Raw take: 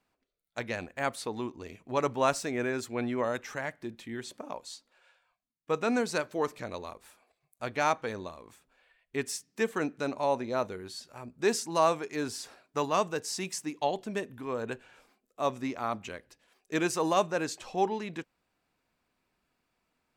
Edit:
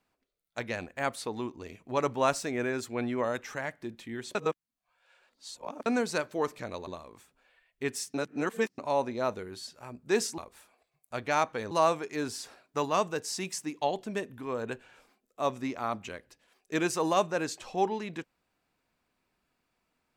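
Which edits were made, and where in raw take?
4.35–5.86 reverse
6.87–8.2 move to 11.71
9.47–10.11 reverse

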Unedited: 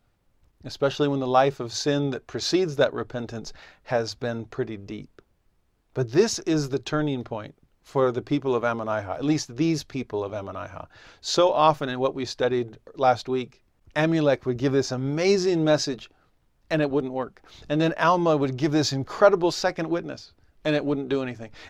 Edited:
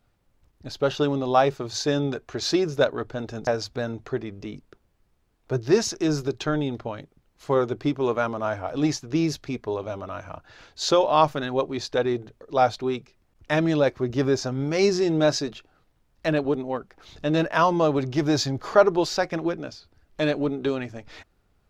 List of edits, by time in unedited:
3.47–3.93 cut

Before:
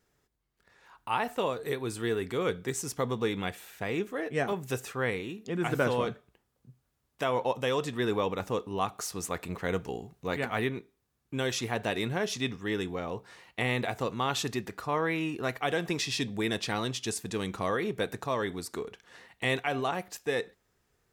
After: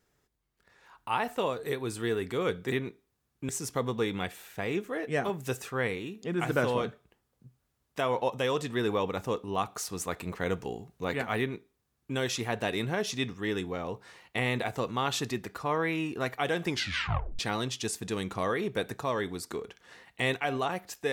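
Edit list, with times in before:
10.62–11.39 copy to 2.72
15.9 tape stop 0.72 s

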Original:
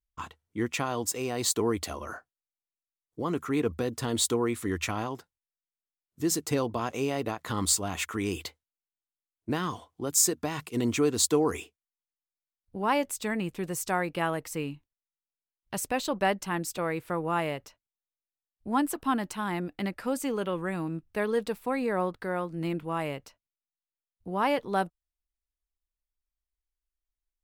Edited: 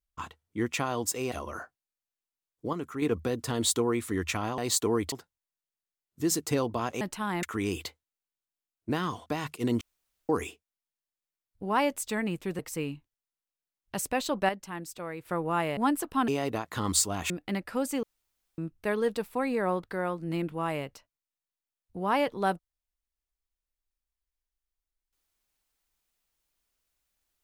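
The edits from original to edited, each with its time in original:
1.32–1.86 move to 5.12
3.27–3.56 gain -5.5 dB
7.01–8.03 swap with 19.19–19.61
9.86–10.39 cut
10.94–11.42 room tone
13.72–14.38 cut
16.28–17.04 gain -7.5 dB
17.56–18.68 cut
20.34–20.89 room tone

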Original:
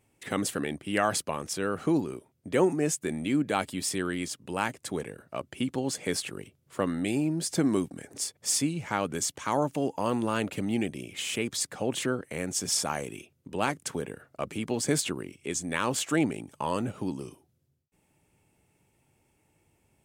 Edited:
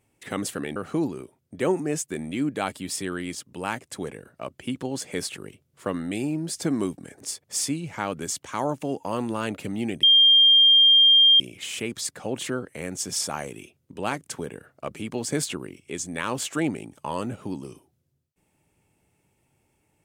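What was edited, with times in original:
0.76–1.69 cut
10.96 add tone 3200 Hz -12 dBFS 1.37 s

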